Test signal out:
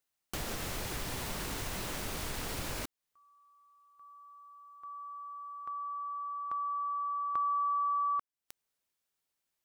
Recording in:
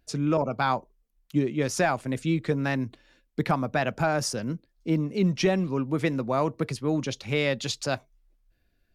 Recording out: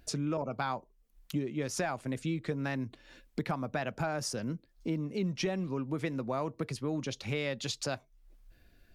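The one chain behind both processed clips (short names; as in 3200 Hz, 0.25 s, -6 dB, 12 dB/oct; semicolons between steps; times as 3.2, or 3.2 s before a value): compressor 2.5:1, threshold -48 dBFS; gain +8.5 dB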